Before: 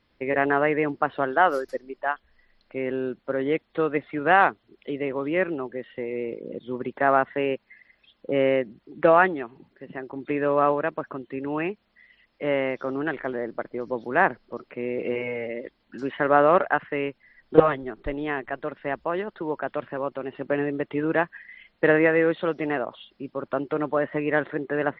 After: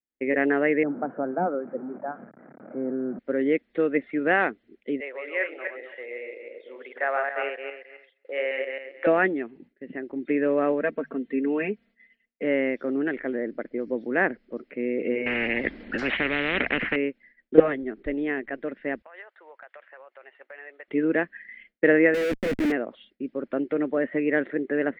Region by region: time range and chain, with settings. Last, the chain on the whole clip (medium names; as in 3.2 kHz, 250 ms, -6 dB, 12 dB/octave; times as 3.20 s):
0.83–3.19 s: one-bit delta coder 32 kbps, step -29.5 dBFS + Chebyshev band-pass 130–1300 Hz, order 4 + comb 1.3 ms, depth 36%
5.00–9.07 s: backward echo that repeats 135 ms, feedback 43%, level -3 dB + high-pass 590 Hz 24 dB/octave
10.81–12.44 s: hum notches 50/100/150 Hz + comb 4.4 ms, depth 77%
15.26–16.96 s: treble shelf 2.9 kHz -11.5 dB + spectrum-flattening compressor 10:1
19.02–20.88 s: inverse Chebyshev high-pass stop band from 170 Hz, stop band 70 dB + treble shelf 2.5 kHz -10.5 dB + compression 5:1, threshold -36 dBFS
22.14–22.72 s: treble shelf 2.5 kHz -10.5 dB + Schmitt trigger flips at -36 dBFS
whole clip: treble shelf 3.5 kHz -11 dB; expander -49 dBFS; graphic EQ 125/250/500/1000/2000 Hz -7/+10/+5/-11/+11 dB; trim -4.5 dB